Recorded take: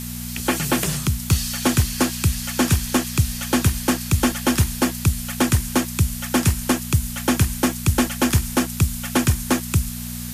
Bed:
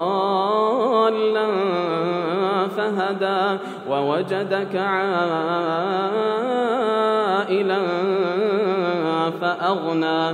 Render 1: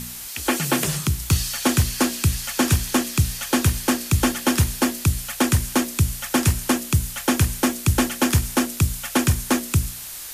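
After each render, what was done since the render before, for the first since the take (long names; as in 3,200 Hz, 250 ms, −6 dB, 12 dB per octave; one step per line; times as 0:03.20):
hum removal 60 Hz, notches 12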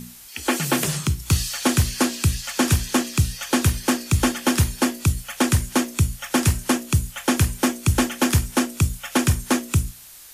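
noise reduction from a noise print 9 dB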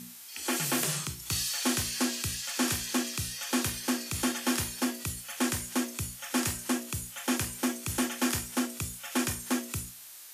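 high-pass filter 450 Hz 6 dB per octave
harmonic and percussive parts rebalanced percussive −11 dB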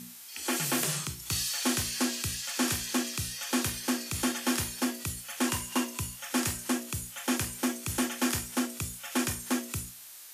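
0:05.47–0:06.18: hollow resonant body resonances 1,000/2,800 Hz, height 16 dB → 13 dB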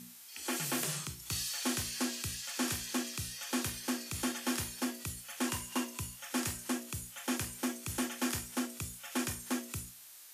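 level −5.5 dB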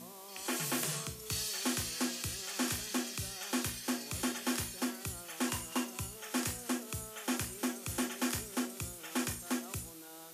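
mix in bed −33 dB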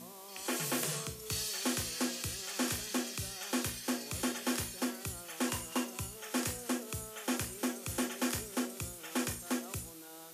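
dynamic equaliser 490 Hz, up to +6 dB, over −57 dBFS, Q 3.5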